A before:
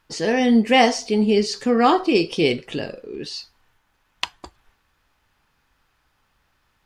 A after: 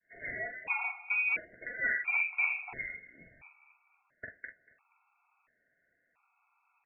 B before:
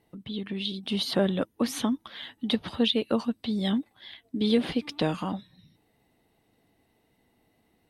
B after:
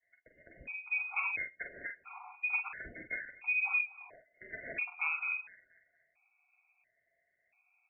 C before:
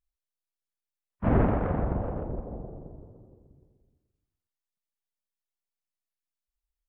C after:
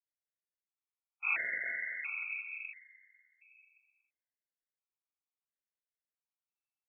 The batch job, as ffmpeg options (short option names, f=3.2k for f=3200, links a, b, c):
-filter_complex "[0:a]highpass=84,bandreject=f=50:t=h:w=6,bandreject=f=100:t=h:w=6,bandreject=f=150:t=h:w=6,bandreject=f=200:t=h:w=6,adynamicequalizer=threshold=0.0141:dfrequency=1800:dqfactor=0.71:tfrequency=1800:tqfactor=0.71:attack=5:release=100:ratio=0.375:range=2.5:mode=boostabove:tftype=bell,acompressor=threshold=-22dB:ratio=6,aeval=exprs='0.1*(abs(mod(val(0)/0.1+3,4)-2)-1)':c=same,flanger=delay=4.6:depth=5.1:regen=-48:speed=0.97:shape=triangular,asplit=2[a][b];[b]adelay=44,volume=-6dB[c];[a][c]amix=inputs=2:normalize=0,aecho=1:1:238|476|714:0.0944|0.034|0.0122,lowpass=f=2.3k:t=q:w=0.5098,lowpass=f=2.3k:t=q:w=0.6013,lowpass=f=2.3k:t=q:w=0.9,lowpass=f=2.3k:t=q:w=2.563,afreqshift=-2700,afftfilt=real='re*gt(sin(2*PI*0.73*pts/sr)*(1-2*mod(floor(b*sr/1024/720),2)),0)':imag='im*gt(sin(2*PI*0.73*pts/sr)*(1-2*mod(floor(b*sr/1024/720),2)),0)':win_size=1024:overlap=0.75"